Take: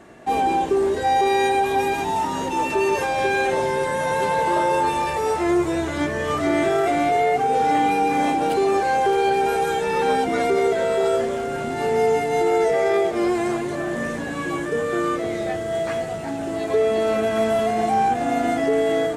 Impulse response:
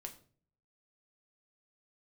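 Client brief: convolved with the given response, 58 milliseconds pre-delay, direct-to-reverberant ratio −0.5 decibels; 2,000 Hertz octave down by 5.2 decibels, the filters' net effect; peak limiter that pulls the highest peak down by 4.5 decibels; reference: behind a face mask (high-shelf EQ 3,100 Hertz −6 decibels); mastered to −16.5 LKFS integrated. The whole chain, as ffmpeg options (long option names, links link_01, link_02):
-filter_complex "[0:a]equalizer=frequency=2000:width_type=o:gain=-4.5,alimiter=limit=-14.5dB:level=0:latency=1,asplit=2[link_01][link_02];[1:a]atrim=start_sample=2205,adelay=58[link_03];[link_02][link_03]afir=irnorm=-1:irlink=0,volume=4.5dB[link_04];[link_01][link_04]amix=inputs=2:normalize=0,highshelf=frequency=3100:gain=-6,volume=3.5dB"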